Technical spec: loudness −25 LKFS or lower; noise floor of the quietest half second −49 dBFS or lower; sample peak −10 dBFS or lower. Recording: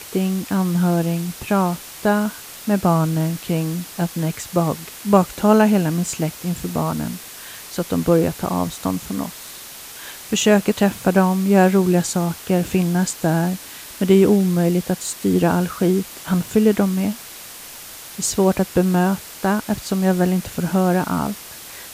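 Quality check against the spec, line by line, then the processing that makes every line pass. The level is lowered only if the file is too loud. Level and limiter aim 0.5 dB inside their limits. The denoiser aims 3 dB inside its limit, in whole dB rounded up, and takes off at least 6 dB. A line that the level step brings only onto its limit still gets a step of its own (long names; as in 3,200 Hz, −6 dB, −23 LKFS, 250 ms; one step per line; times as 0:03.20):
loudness −19.5 LKFS: out of spec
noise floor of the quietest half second −37 dBFS: out of spec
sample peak −1.5 dBFS: out of spec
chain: broadband denoise 9 dB, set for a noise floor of −37 dBFS
level −6 dB
brickwall limiter −10.5 dBFS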